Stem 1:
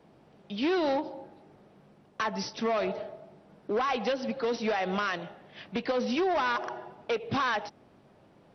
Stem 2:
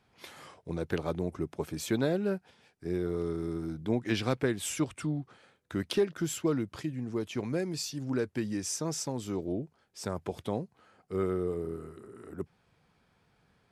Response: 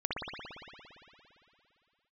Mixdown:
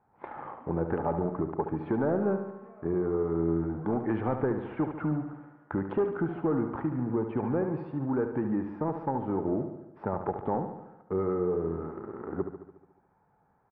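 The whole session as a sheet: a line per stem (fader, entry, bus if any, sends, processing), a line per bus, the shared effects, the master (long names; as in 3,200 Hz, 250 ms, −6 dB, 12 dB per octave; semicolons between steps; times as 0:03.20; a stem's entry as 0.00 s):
−19.0 dB, 0.00 s, send −3.5 dB, no echo send, tuned comb filter 120 Hz, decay 0.33 s, harmonics all, mix 90%
+3.0 dB, 0.00 s, no send, echo send −8.5 dB, parametric band 850 Hz +11.5 dB 0.27 octaves; leveller curve on the samples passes 2; downward compressor 2 to 1, threshold −33 dBFS, peak gain reduction 8.5 dB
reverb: on, RT60 2.9 s, pre-delay 57 ms
echo: repeating echo 72 ms, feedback 60%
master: inverse Chebyshev low-pass filter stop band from 6,200 Hz, stop band 70 dB; low-shelf EQ 130 Hz −5.5 dB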